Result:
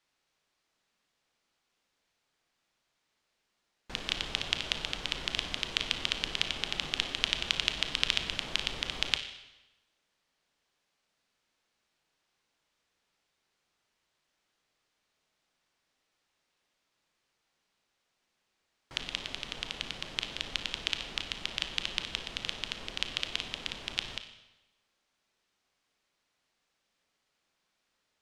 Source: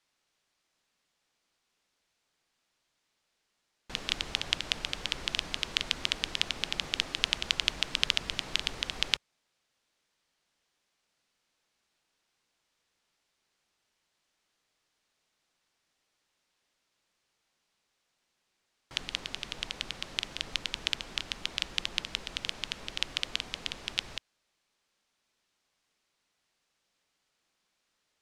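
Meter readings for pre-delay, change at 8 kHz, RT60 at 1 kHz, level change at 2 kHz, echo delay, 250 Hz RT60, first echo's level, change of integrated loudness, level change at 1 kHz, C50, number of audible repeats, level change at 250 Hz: 27 ms, -2.5 dB, 1.0 s, 0.0 dB, no echo, 1.0 s, no echo, -0.5 dB, +0.5 dB, 9.0 dB, no echo, +0.5 dB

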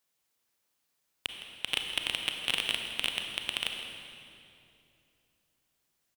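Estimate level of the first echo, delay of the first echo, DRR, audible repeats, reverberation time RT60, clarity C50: -14.0 dB, 162 ms, 3.0 dB, 1, 2.7 s, 3.5 dB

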